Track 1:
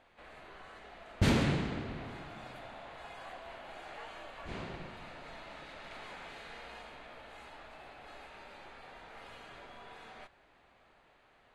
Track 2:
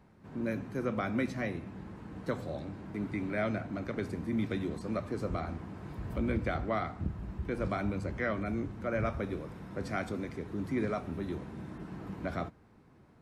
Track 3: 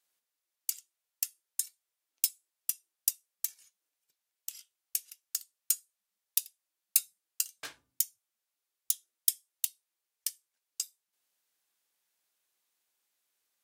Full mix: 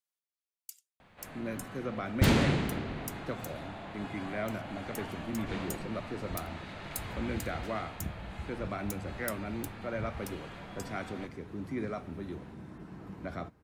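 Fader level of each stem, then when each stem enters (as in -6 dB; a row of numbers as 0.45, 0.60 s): +3.0, -3.5, -14.0 dB; 1.00, 1.00, 0.00 s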